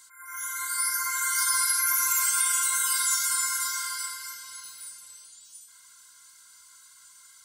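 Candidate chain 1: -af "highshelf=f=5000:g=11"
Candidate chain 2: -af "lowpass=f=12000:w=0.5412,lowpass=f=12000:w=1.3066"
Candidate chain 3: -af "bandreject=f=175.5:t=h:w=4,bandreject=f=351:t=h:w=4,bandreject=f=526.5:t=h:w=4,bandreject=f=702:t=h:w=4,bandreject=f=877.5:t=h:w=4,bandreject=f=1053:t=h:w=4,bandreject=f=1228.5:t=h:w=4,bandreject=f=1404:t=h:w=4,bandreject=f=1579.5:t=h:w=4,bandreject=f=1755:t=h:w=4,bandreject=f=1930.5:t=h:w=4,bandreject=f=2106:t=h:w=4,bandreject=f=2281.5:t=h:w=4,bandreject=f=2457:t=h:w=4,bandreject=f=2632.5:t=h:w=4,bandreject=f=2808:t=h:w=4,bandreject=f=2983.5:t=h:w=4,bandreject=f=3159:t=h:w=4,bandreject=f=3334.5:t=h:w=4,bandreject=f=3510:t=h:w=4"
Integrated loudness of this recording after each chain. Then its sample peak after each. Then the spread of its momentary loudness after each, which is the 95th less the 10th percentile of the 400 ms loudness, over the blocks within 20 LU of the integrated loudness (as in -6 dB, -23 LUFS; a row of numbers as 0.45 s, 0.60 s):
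-15.5 LUFS, -24.5 LUFS, -24.0 LUFS; -4.0 dBFS, -12.5 dBFS, -12.5 dBFS; 18 LU, 18 LU, 18 LU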